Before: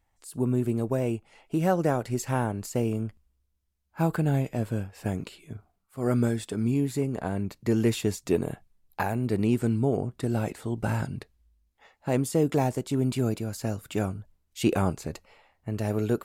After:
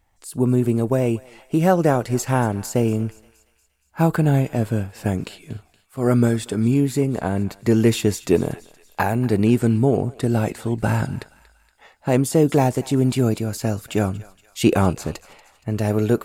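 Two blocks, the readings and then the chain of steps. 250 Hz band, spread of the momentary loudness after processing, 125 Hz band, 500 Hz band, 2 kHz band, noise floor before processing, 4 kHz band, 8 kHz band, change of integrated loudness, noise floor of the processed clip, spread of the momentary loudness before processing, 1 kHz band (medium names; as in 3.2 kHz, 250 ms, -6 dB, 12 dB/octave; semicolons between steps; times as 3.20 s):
+7.5 dB, 14 LU, +7.5 dB, +7.5 dB, +7.5 dB, -74 dBFS, +7.5 dB, +7.5 dB, +7.5 dB, -62 dBFS, 14 LU, +7.5 dB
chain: thinning echo 235 ms, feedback 56%, high-pass 1.1 kHz, level -17.5 dB; trim +7.5 dB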